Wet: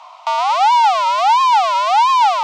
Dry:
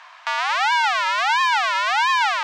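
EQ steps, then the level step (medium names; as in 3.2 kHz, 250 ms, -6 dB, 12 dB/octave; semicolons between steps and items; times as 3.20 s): bass shelf 350 Hz +11 dB; peaking EQ 650 Hz +7 dB 2.9 oct; static phaser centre 450 Hz, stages 6; +2.5 dB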